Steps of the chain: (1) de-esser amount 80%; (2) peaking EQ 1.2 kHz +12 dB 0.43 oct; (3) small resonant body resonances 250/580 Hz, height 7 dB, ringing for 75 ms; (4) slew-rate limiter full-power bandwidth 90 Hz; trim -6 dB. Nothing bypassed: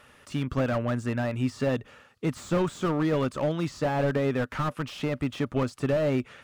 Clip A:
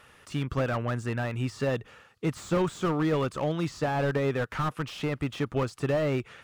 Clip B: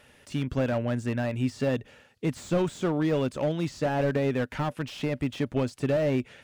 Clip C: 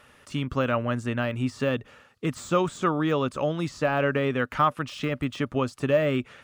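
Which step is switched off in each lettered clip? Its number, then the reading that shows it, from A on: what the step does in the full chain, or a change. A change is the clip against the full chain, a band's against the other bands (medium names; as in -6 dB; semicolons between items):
3, 250 Hz band -2.5 dB; 2, 1 kHz band -2.0 dB; 4, distortion -5 dB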